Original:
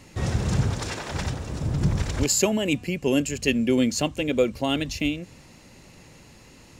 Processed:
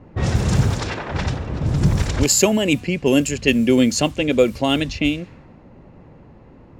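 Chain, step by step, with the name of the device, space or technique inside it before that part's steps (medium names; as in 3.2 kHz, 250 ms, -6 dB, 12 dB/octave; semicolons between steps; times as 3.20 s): cassette deck with a dynamic noise filter (white noise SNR 30 dB; level-controlled noise filter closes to 810 Hz, open at -19.5 dBFS); trim +6 dB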